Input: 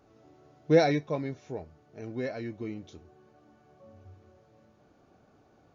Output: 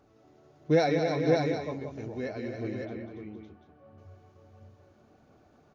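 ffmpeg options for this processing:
ffmpeg -i in.wav -filter_complex "[0:a]aecho=1:1:192|280|462|558|739:0.422|0.447|0.299|0.631|0.299,aphaser=in_gain=1:out_gain=1:delay=4.9:decay=0.21:speed=1.5:type=sinusoidal,asettb=1/sr,asplit=3[link_01][link_02][link_03];[link_01]atrim=end=2.854[link_04];[link_02]atrim=start=2.85:end=3.98,asetpts=PTS-STARTPTS,afade=type=in:duration=0.004:curve=qsin,afade=type=out:start_time=1.126:duration=0.004:curve=qsin,lowpass=2600[link_05];[link_03]atrim=start=3.976[link_06];[link_04][link_05]acrossfade=duration=0.004:curve1=hsin:curve2=qsin[link_07];[link_07][link_06]acrossfade=duration=0.004:curve1=qsin:curve2=hsin,volume=-2dB" out.wav

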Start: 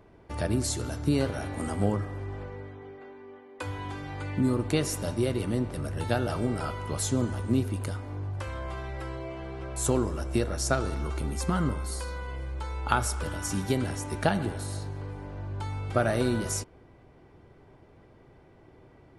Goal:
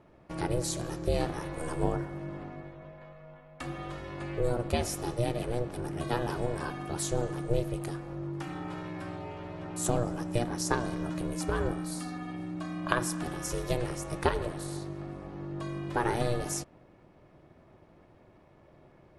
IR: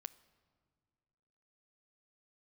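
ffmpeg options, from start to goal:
-af "aeval=exprs='val(0)*sin(2*PI*240*n/s)':channel_layout=same"

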